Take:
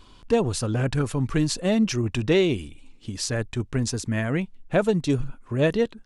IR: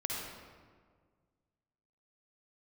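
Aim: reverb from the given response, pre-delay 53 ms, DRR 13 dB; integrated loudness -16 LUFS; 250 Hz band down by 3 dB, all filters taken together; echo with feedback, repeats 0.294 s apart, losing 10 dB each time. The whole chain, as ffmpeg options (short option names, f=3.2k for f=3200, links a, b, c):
-filter_complex "[0:a]equalizer=f=250:t=o:g=-4,aecho=1:1:294|588|882|1176:0.316|0.101|0.0324|0.0104,asplit=2[a][b];[1:a]atrim=start_sample=2205,adelay=53[c];[b][c]afir=irnorm=-1:irlink=0,volume=-16.5dB[d];[a][d]amix=inputs=2:normalize=0,volume=9.5dB"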